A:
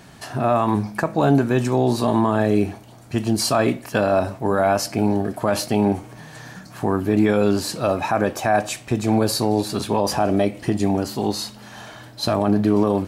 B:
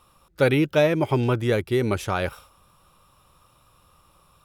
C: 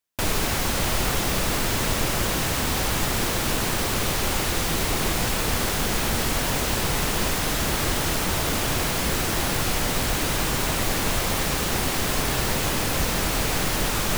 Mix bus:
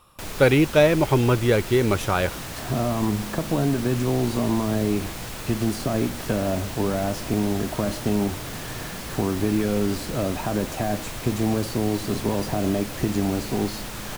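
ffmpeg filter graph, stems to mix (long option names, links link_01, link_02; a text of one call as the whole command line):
ffmpeg -i stem1.wav -i stem2.wav -i stem3.wav -filter_complex "[0:a]bandreject=frequency=840:width=12,acrossover=split=350|820[link_01][link_02][link_03];[link_01]acompressor=threshold=-22dB:ratio=4[link_04];[link_02]acompressor=threshold=-33dB:ratio=4[link_05];[link_03]acompressor=threshold=-41dB:ratio=4[link_06];[link_04][link_05][link_06]amix=inputs=3:normalize=0,adelay=2350,volume=1dB[link_07];[1:a]volume=2.5dB[link_08];[2:a]volume=-10.5dB[link_09];[link_07][link_08][link_09]amix=inputs=3:normalize=0" out.wav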